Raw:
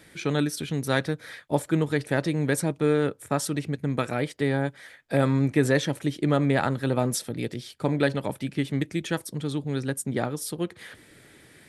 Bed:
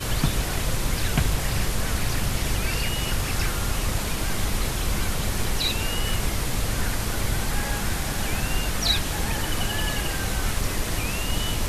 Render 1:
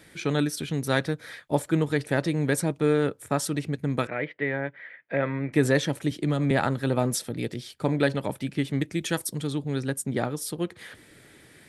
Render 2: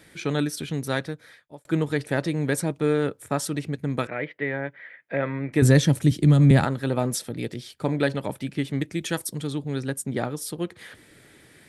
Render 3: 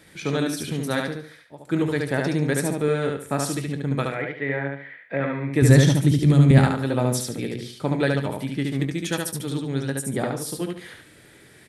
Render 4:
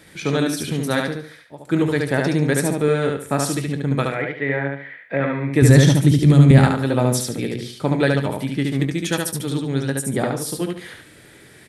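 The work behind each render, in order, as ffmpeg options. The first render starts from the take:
ffmpeg -i in.wav -filter_complex "[0:a]asettb=1/sr,asplit=3[link_01][link_02][link_03];[link_01]atrim=end=4.074[link_04];[link_02]atrim=start=4.07:end=5.53,asetpts=PTS-STARTPTS,afade=type=in:duration=0.004:curve=qsin,afade=type=out:start_time=1.456:duration=0.004:curve=qsin,highpass=200,equalizer=frequency=250:width_type=q:width=4:gain=-8,equalizer=frequency=390:width_type=q:width=4:gain=-4,equalizer=frequency=790:width_type=q:width=4:gain=-6,equalizer=frequency=1200:width_type=q:width=4:gain=-4,equalizer=frequency=2000:width_type=q:width=4:gain=7,lowpass=frequency=2600:width=0.5412,lowpass=frequency=2600:width=1.3066[link_05];[link_03]atrim=start=5.526[link_06];[link_04][link_05]acrossfade=duration=0.004:curve1=hsin:curve2=qsin[link_07];[link_07][link_06]acrossfade=duration=0.004:curve1=qsin:curve2=hsin,asettb=1/sr,asplit=3[link_08][link_09][link_10];[link_08]atrim=end=6.114[link_11];[link_09]atrim=start=6.11:end=6.51,asetpts=PTS-STARTPTS,afade=type=in:duration=0.004:curve=qsin,afade=type=out:start_time=0.396:duration=0.004:curve=qsin,acrossover=split=220|3000[link_12][link_13][link_14];[link_13]acompressor=threshold=-26dB:ratio=6:attack=3.2:release=140:knee=2.83:detection=peak[link_15];[link_12][link_15][link_14]amix=inputs=3:normalize=0[link_16];[link_10]atrim=start=6.506[link_17];[link_11][link_16]acrossfade=duration=0.004:curve1=hsin:curve2=qsin[link_18];[link_18][link_17]acrossfade=duration=0.004:curve1=qsin:curve2=hsin,asettb=1/sr,asplit=3[link_19][link_20][link_21];[link_19]atrim=end=9.014[link_22];[link_20]atrim=start=9.01:end=9.47,asetpts=PTS-STARTPTS,afade=type=in:duration=0.004:curve=qsin,afade=type=out:start_time=0.456:duration=0.004:curve=qsin,highshelf=frequency=4700:gain=9[link_23];[link_21]atrim=start=9.466[link_24];[link_22][link_23]acrossfade=duration=0.004:curve1=hsin:curve2=qsin[link_25];[link_25][link_24]acrossfade=duration=0.004:curve1=qsin:curve2=hsin" out.wav
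ffmpeg -i in.wav -filter_complex "[0:a]asettb=1/sr,asplit=3[link_01][link_02][link_03];[link_01]atrim=end=5.624[link_04];[link_02]atrim=start=5.62:end=6.65,asetpts=PTS-STARTPTS,afade=type=in:duration=0.004:curve=qsin,afade=type=out:start_time=1.026:duration=0.004:curve=qsin,bass=frequency=250:gain=13,treble=frequency=4000:gain=7[link_05];[link_03]atrim=start=6.646[link_06];[link_04][link_05]acrossfade=duration=0.004:curve1=hsin:curve2=qsin[link_07];[link_07][link_06]acrossfade=duration=0.004:curve1=qsin:curve2=hsin,asplit=2[link_08][link_09];[link_08]atrim=end=1.65,asetpts=PTS-STARTPTS,afade=type=out:start_time=0.75:duration=0.9[link_10];[link_09]atrim=start=1.65,asetpts=PTS-STARTPTS,afade=type=in:duration=0.004:curve=hsin[link_11];[link_10][link_11]concat=n=2:v=0:a=1" out.wav
ffmpeg -i in.wav -filter_complex "[0:a]asplit=2[link_01][link_02];[link_02]adelay=22,volume=-13dB[link_03];[link_01][link_03]amix=inputs=2:normalize=0,asplit=2[link_04][link_05];[link_05]aecho=0:1:72|144|216|288:0.708|0.219|0.068|0.0211[link_06];[link_04][link_06]amix=inputs=2:normalize=0" out.wav
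ffmpeg -i in.wav -af "volume=4dB,alimiter=limit=-2dB:level=0:latency=1" out.wav

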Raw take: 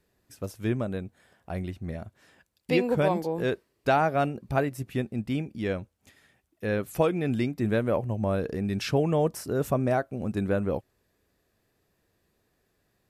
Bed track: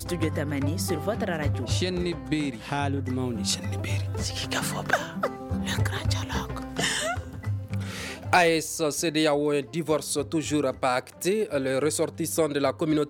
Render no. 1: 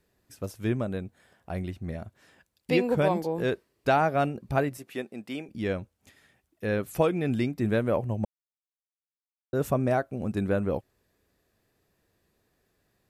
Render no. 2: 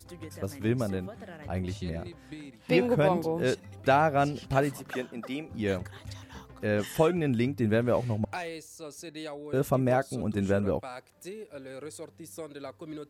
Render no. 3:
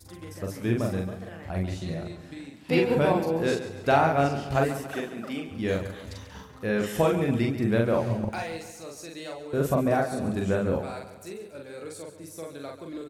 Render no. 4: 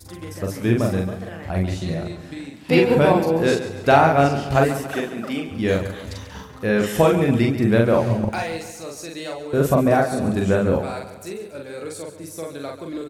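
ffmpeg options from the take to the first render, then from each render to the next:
ffmpeg -i in.wav -filter_complex "[0:a]asettb=1/sr,asplit=3[link_01][link_02][link_03];[link_01]atrim=end=4.774[link_04];[link_02]atrim=start=4.77:end=5.49,asetpts=PTS-STARTPTS,afade=type=in:duration=0.004:curve=qsin,afade=type=out:start_time=0.716:duration=0.004:curve=qsin,highpass=360[link_05];[link_03]atrim=start=5.486[link_06];[link_04][link_05]acrossfade=duration=0.004:curve1=hsin:curve2=qsin[link_07];[link_07][link_06]acrossfade=duration=0.004:curve1=qsin:curve2=hsin,asplit=3[link_08][link_09][link_10];[link_08]atrim=end=8.25,asetpts=PTS-STARTPTS,afade=type=out:start_time=8.246:duration=0.004:curve=hsin[link_11];[link_09]atrim=start=8.25:end=9.53,asetpts=PTS-STARTPTS,volume=0[link_12];[link_10]atrim=start=9.53,asetpts=PTS-STARTPTS,afade=type=in:duration=0.004:curve=hsin[link_13];[link_11][link_12][link_13]concat=n=3:v=0:a=1" out.wav
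ffmpeg -i in.wav -i bed.wav -filter_complex "[1:a]volume=-16.5dB[link_01];[0:a][link_01]amix=inputs=2:normalize=0" out.wav
ffmpeg -i in.wav -filter_complex "[0:a]asplit=2[link_01][link_02];[link_02]adelay=43,volume=-2.5dB[link_03];[link_01][link_03]amix=inputs=2:normalize=0,aecho=1:1:139|278|417|556|695:0.251|0.128|0.0653|0.0333|0.017" out.wav
ffmpeg -i in.wav -af "volume=7dB" out.wav

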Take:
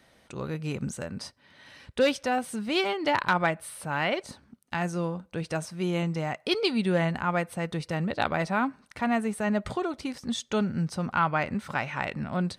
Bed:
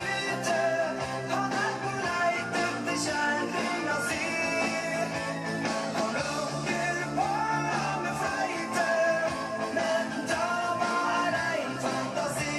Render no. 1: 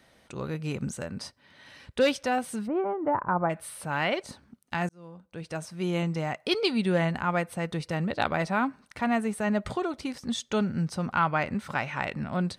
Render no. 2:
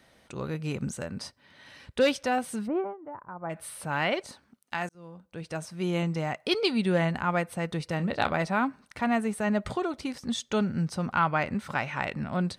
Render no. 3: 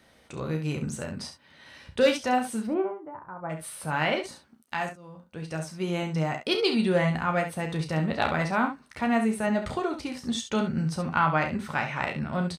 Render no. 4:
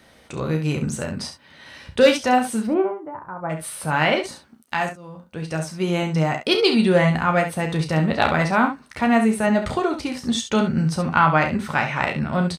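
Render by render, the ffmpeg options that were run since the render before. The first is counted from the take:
ffmpeg -i in.wav -filter_complex "[0:a]asplit=3[link_01][link_02][link_03];[link_01]afade=type=out:start_time=2.66:duration=0.02[link_04];[link_02]lowpass=frequency=1200:width=0.5412,lowpass=frequency=1200:width=1.3066,afade=type=in:start_time=2.66:duration=0.02,afade=type=out:start_time=3.49:duration=0.02[link_05];[link_03]afade=type=in:start_time=3.49:duration=0.02[link_06];[link_04][link_05][link_06]amix=inputs=3:normalize=0,asplit=2[link_07][link_08];[link_07]atrim=end=4.89,asetpts=PTS-STARTPTS,afade=type=out:start_time=4.886:duration=0.004:curve=hsin[link_09];[link_08]atrim=start=4.89,asetpts=PTS-STARTPTS,afade=type=in:duration=1.06[link_10];[link_09][link_10]concat=n=2:v=0:a=1" out.wav
ffmpeg -i in.wav -filter_complex "[0:a]asettb=1/sr,asplit=3[link_01][link_02][link_03];[link_01]atrim=end=4.274[link_04];[link_02]atrim=start=4.27:end=4.95,asetpts=PTS-STARTPTS,afade=type=in:duration=0.004:curve=qsin,afade=type=out:start_time=0.676:duration=0.004:curve=qsin,lowshelf=frequency=290:gain=-11.5[link_05];[link_03]atrim=start=4.946[link_06];[link_04][link_05]acrossfade=duration=0.004:curve1=hsin:curve2=qsin[link_07];[link_07][link_06]acrossfade=duration=0.004:curve1=qsin:curve2=hsin,asettb=1/sr,asplit=3[link_08][link_09][link_10];[link_08]atrim=end=7.964[link_11];[link_09]atrim=start=7.96:end=8.37,asetpts=PTS-STARTPTS,afade=type=in:duration=0.004:curve=qsin,afade=type=out:start_time=0.406:duration=0.004:curve=qsin,asplit=2[link_12][link_13];[link_13]adelay=29,volume=-10.5dB[link_14];[link_12][link_14]amix=inputs=2:normalize=0,atrim=end_sample=18081[link_15];[link_10]atrim=start=8.366[link_16];[link_11][link_15]acrossfade=duration=0.004:curve1=hsin:curve2=qsin[link_17];[link_17][link_16]acrossfade=duration=0.004:curve1=qsin:curve2=hsin,asplit=3[link_18][link_19][link_20];[link_18]atrim=end=2.97,asetpts=PTS-STARTPTS,afade=type=out:start_time=2.76:duration=0.21:silence=0.177828[link_21];[link_19]atrim=start=2.97:end=3.41,asetpts=PTS-STARTPTS,volume=-15dB[link_22];[link_20]atrim=start=3.41,asetpts=PTS-STARTPTS,afade=type=in:duration=0.21:silence=0.177828[link_23];[link_21][link_22][link_23]concat=n=3:v=0:a=1" out.wav
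ffmpeg -i in.wav -filter_complex "[0:a]asplit=2[link_01][link_02];[link_02]adelay=13,volume=-9dB[link_03];[link_01][link_03]amix=inputs=2:normalize=0,asplit=2[link_04][link_05];[link_05]aecho=0:1:32|68:0.355|0.355[link_06];[link_04][link_06]amix=inputs=2:normalize=0" out.wav
ffmpeg -i in.wav -af "volume=7dB" out.wav

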